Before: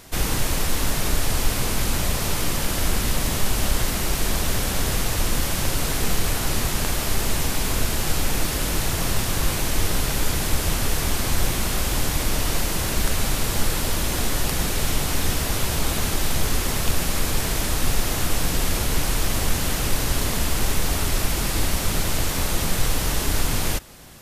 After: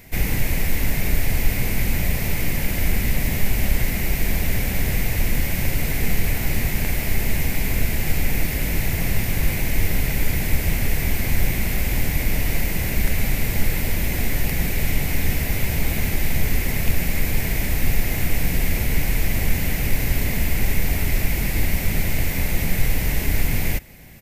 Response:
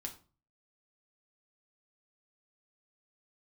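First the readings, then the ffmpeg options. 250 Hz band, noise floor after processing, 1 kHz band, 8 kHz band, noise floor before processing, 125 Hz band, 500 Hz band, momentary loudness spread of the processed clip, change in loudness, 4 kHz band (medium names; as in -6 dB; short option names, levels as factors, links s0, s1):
+1.0 dB, -25 dBFS, -6.0 dB, -6.0 dB, -25 dBFS, +3.0 dB, -2.5 dB, 1 LU, 0.0 dB, -6.0 dB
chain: -af "firequalizer=gain_entry='entry(190,0);entry(320,-5);entry(760,-6);entry(1200,-15);entry(2100,4);entry(3200,-10);entry(10000,-9);entry(15000,4)':delay=0.05:min_phase=1,volume=1.41"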